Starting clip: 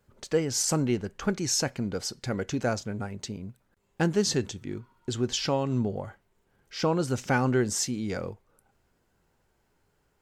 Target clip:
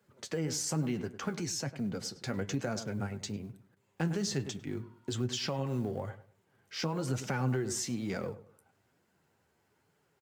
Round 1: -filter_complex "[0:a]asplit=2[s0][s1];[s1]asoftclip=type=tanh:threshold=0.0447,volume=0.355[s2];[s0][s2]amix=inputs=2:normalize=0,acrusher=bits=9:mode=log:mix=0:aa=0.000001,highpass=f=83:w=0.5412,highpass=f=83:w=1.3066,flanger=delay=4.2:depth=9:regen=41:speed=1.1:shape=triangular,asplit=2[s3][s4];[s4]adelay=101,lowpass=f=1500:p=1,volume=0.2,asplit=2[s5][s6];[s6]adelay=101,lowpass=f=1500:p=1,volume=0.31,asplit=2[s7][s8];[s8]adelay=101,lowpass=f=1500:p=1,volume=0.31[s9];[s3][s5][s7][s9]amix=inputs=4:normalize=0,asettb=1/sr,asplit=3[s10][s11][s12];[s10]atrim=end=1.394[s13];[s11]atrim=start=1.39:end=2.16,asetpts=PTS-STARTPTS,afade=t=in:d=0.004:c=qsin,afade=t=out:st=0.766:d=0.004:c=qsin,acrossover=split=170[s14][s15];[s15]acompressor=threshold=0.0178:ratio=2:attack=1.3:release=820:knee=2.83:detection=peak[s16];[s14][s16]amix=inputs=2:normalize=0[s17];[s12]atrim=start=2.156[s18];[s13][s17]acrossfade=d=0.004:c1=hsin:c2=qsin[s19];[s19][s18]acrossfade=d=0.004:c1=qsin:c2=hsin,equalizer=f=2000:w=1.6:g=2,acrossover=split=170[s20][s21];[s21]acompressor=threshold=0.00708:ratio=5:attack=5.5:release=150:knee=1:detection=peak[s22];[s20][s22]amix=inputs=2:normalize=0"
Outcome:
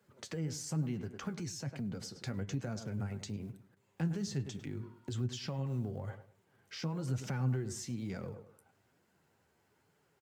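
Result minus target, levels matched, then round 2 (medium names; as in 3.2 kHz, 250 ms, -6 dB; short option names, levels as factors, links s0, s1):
compression: peak gain reduction +9.5 dB; saturation: distortion -6 dB
-filter_complex "[0:a]asplit=2[s0][s1];[s1]asoftclip=type=tanh:threshold=0.0133,volume=0.355[s2];[s0][s2]amix=inputs=2:normalize=0,acrusher=bits=9:mode=log:mix=0:aa=0.000001,highpass=f=83:w=0.5412,highpass=f=83:w=1.3066,flanger=delay=4.2:depth=9:regen=41:speed=1.1:shape=triangular,asplit=2[s3][s4];[s4]adelay=101,lowpass=f=1500:p=1,volume=0.2,asplit=2[s5][s6];[s6]adelay=101,lowpass=f=1500:p=1,volume=0.31,asplit=2[s7][s8];[s8]adelay=101,lowpass=f=1500:p=1,volume=0.31[s9];[s3][s5][s7][s9]amix=inputs=4:normalize=0,asettb=1/sr,asplit=3[s10][s11][s12];[s10]atrim=end=1.394[s13];[s11]atrim=start=1.39:end=2.16,asetpts=PTS-STARTPTS,afade=t=in:d=0.004:c=qsin,afade=t=out:st=0.766:d=0.004:c=qsin,acrossover=split=170[s14][s15];[s15]acompressor=threshold=0.0178:ratio=2:attack=1.3:release=820:knee=2.83:detection=peak[s16];[s14][s16]amix=inputs=2:normalize=0[s17];[s12]atrim=start=2.156[s18];[s13][s17]acrossfade=d=0.004:c1=hsin:c2=qsin[s19];[s19][s18]acrossfade=d=0.004:c1=qsin:c2=hsin,equalizer=f=2000:w=1.6:g=2,acrossover=split=170[s20][s21];[s21]acompressor=threshold=0.0251:ratio=5:attack=5.5:release=150:knee=1:detection=peak[s22];[s20][s22]amix=inputs=2:normalize=0"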